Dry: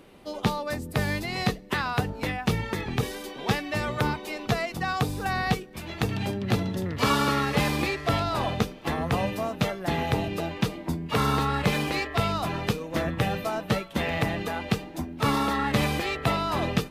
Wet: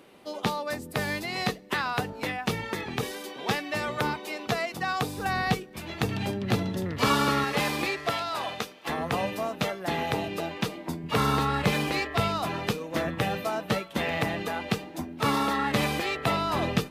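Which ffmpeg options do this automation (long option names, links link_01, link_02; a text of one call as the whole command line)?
ffmpeg -i in.wav -af "asetnsamples=nb_out_samples=441:pad=0,asendcmd='5.18 highpass f 90;7.44 highpass f 330;8.1 highpass f 960;8.89 highpass f 260;11.04 highpass f 76;12.28 highpass f 170;16.32 highpass f 74',highpass=frequency=260:poles=1" out.wav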